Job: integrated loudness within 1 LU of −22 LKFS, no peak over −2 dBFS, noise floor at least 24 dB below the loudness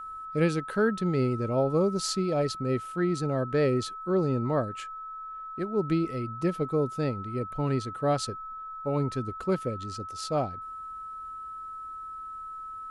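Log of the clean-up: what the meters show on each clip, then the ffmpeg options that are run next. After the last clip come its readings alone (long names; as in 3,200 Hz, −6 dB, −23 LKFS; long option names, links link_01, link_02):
interfering tone 1,300 Hz; level of the tone −37 dBFS; integrated loudness −30.0 LKFS; sample peak −14.0 dBFS; target loudness −22.0 LKFS
→ -af "bandreject=frequency=1300:width=30"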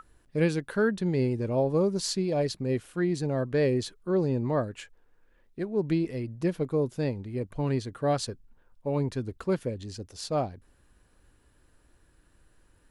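interfering tone none found; integrated loudness −29.0 LKFS; sample peak −14.0 dBFS; target loudness −22.0 LKFS
→ -af "volume=7dB"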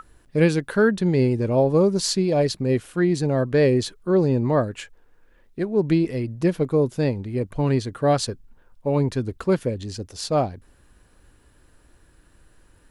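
integrated loudness −22.0 LKFS; sample peak −7.0 dBFS; background noise floor −57 dBFS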